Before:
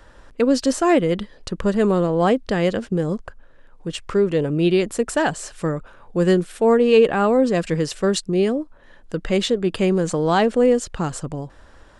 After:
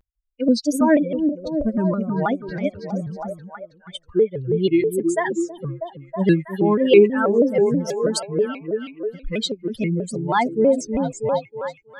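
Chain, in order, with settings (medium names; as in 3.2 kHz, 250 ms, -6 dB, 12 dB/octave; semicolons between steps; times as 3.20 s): expander on every frequency bin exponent 3; repeats whose band climbs or falls 321 ms, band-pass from 280 Hz, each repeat 0.7 oct, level -2 dB; vibrato with a chosen wave square 3.1 Hz, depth 160 cents; trim +4 dB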